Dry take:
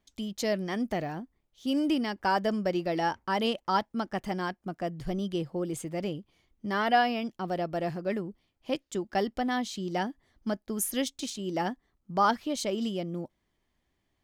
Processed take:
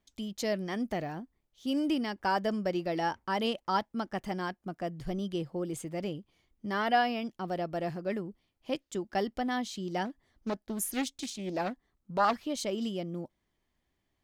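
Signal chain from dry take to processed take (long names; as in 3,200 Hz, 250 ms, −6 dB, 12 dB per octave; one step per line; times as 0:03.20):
0:10.05–0:12.33: highs frequency-modulated by the lows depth 0.43 ms
level −2.5 dB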